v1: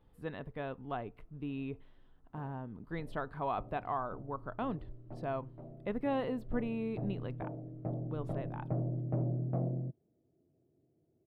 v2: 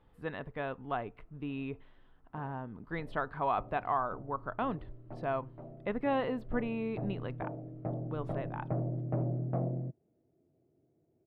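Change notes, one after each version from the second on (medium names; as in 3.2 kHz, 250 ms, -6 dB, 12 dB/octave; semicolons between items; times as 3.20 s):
speech: add treble shelf 5.8 kHz -8 dB; master: add peaking EQ 1.7 kHz +6.5 dB 2.9 oct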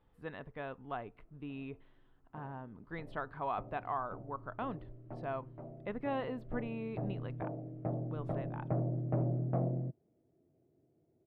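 speech -5.5 dB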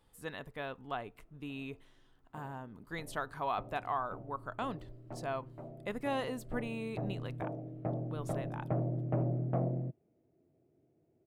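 master: remove distance through air 430 m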